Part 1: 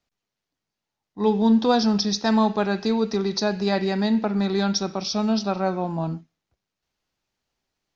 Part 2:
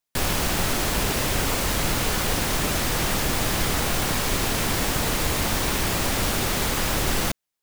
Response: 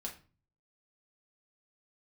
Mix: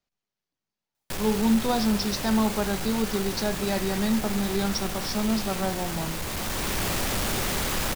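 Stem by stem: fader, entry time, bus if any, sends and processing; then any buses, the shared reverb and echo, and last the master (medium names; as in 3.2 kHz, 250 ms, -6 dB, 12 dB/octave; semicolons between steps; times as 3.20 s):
-7.5 dB, 0.00 s, send -8 dB, none
-0.5 dB, 0.95 s, send -11.5 dB, saturation -23.5 dBFS, distortion -11 dB; auto duck -7 dB, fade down 0.25 s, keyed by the first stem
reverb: on, RT60 0.35 s, pre-delay 5 ms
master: none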